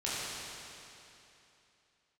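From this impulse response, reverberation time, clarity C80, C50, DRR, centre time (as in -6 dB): 2.9 s, -2.5 dB, -4.5 dB, -9.5 dB, 0.2 s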